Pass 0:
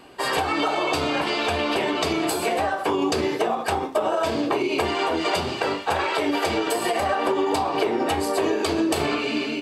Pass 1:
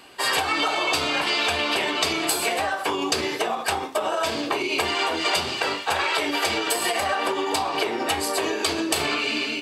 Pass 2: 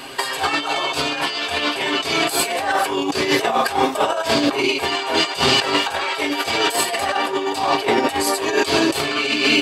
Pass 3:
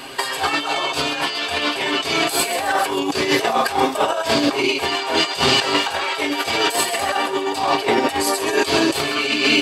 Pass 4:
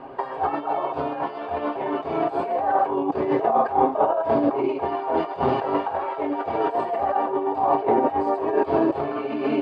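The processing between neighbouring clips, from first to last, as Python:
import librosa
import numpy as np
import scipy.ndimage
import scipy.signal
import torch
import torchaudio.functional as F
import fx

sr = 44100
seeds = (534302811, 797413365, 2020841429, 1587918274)

y1 = fx.tilt_shelf(x, sr, db=-6.0, hz=1100.0)
y2 = y1 + 0.57 * np.pad(y1, (int(7.4 * sr / 1000.0), 0))[:len(y1)]
y2 = fx.over_compress(y2, sr, threshold_db=-27.0, ratio=-0.5)
y2 = y2 * librosa.db_to_amplitude(8.0)
y3 = fx.echo_wet_highpass(y2, sr, ms=132, feedback_pct=48, hz=3800.0, wet_db=-10)
y4 = fx.lowpass_res(y3, sr, hz=810.0, q=1.6)
y4 = y4 * librosa.db_to_amplitude(-3.5)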